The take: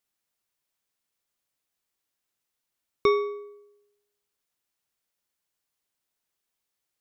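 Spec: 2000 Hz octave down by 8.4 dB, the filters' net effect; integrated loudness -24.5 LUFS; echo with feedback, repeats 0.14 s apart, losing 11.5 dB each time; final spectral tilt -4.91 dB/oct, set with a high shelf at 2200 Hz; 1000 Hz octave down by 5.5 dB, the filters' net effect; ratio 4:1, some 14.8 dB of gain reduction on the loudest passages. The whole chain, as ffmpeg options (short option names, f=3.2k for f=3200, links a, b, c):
-af "equalizer=f=1k:t=o:g=-3,equalizer=f=2k:t=o:g=-4,highshelf=f=2.2k:g=-8.5,acompressor=threshold=-37dB:ratio=4,aecho=1:1:140|280|420:0.266|0.0718|0.0194,volume=18.5dB"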